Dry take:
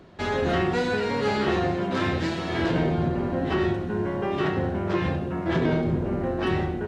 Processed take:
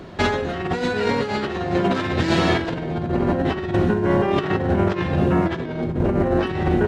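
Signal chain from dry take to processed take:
compressor whose output falls as the input rises −28 dBFS, ratio −0.5
level +8 dB

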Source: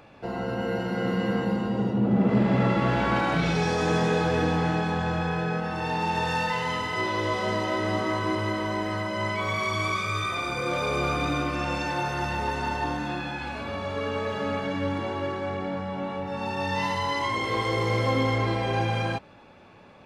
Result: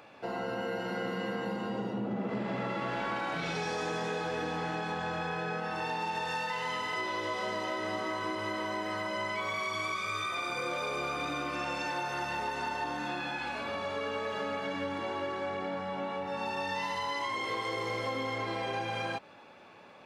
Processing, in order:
high-pass filter 420 Hz 6 dB per octave
downward compressor, threshold −31 dBFS, peak gain reduction 8.5 dB

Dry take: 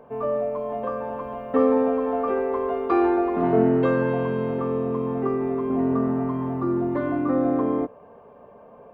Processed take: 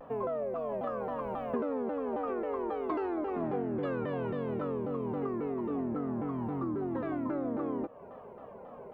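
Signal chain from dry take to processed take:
downward compressor 5 to 1, threshold −32 dBFS, peak gain reduction 16 dB
pitch modulation by a square or saw wave saw down 3.7 Hz, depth 250 cents

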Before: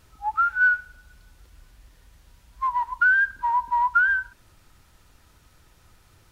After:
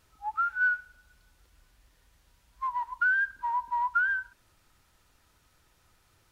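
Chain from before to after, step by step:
low-shelf EQ 290 Hz −5.5 dB
level −6.5 dB

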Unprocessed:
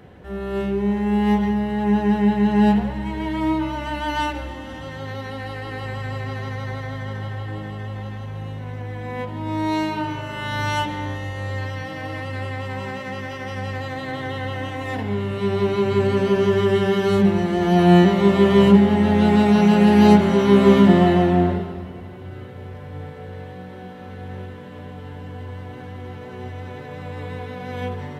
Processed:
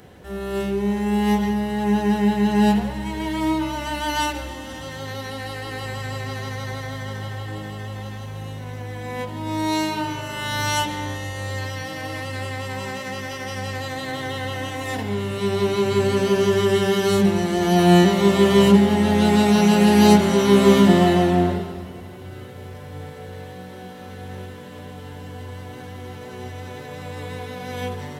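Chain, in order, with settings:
bass and treble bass −2 dB, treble +13 dB

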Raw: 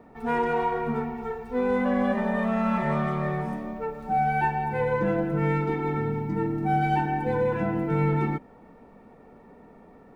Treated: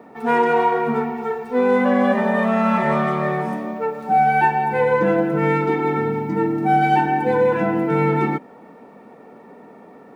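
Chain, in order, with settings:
high-pass filter 210 Hz 12 dB per octave
level +8.5 dB

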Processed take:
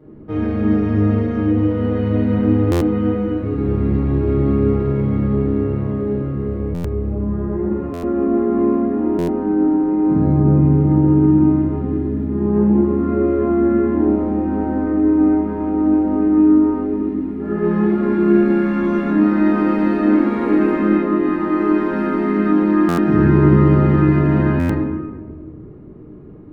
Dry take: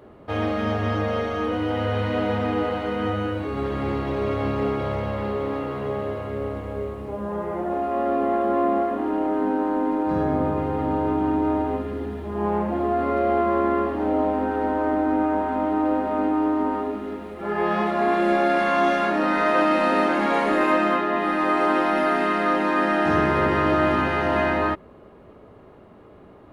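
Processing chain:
drawn EQ curve 370 Hz 0 dB, 630 Hz −15 dB, 2,100 Hz −14 dB, 3,200 Hz −20 dB
convolution reverb RT60 1.4 s, pre-delay 6 ms, DRR −5.5 dB
buffer that repeats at 0:02.71/0:06.74/0:07.93/0:09.18/0:22.88/0:24.59, samples 512, times 8
level +2.5 dB

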